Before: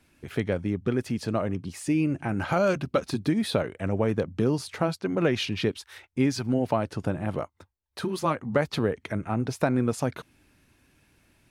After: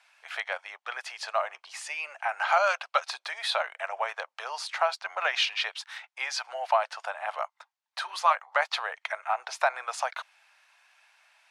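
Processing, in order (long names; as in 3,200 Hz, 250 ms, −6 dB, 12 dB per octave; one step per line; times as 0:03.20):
Butterworth high-pass 690 Hz 48 dB per octave
high-frequency loss of the air 71 metres
level +6.5 dB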